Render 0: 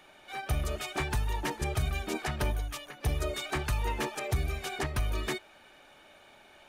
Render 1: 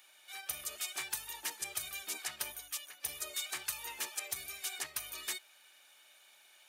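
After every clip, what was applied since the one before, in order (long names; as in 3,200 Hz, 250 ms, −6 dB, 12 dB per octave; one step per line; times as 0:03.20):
first difference
level +4.5 dB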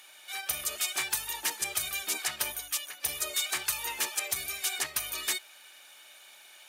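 sine wavefolder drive 5 dB, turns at −19.5 dBFS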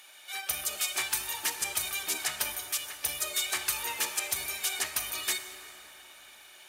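dense smooth reverb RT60 4.4 s, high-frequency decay 0.45×, DRR 7.5 dB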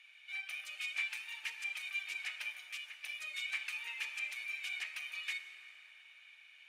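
resonant band-pass 2,400 Hz, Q 4.5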